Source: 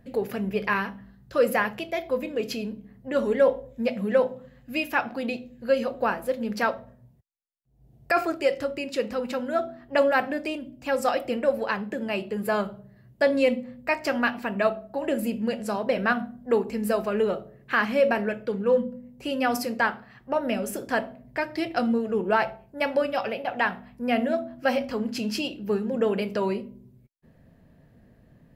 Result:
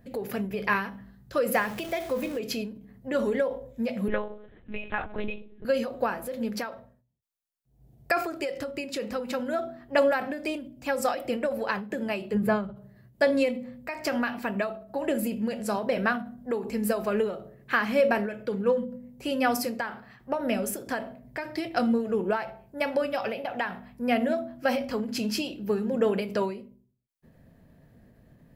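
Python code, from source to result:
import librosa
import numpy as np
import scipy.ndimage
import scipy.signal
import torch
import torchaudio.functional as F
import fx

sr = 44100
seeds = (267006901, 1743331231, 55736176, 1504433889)

y = fx.zero_step(x, sr, step_db=-38.0, at=(1.54, 2.39))
y = fx.lpc_monotone(y, sr, seeds[0], pitch_hz=210.0, order=10, at=(4.08, 5.65))
y = fx.bass_treble(y, sr, bass_db=12, treble_db=-11, at=(12.33, 12.75), fade=0.02)
y = fx.high_shelf(y, sr, hz=8400.0, db=5.5)
y = fx.notch(y, sr, hz=2800.0, q=27.0)
y = fx.end_taper(y, sr, db_per_s=100.0)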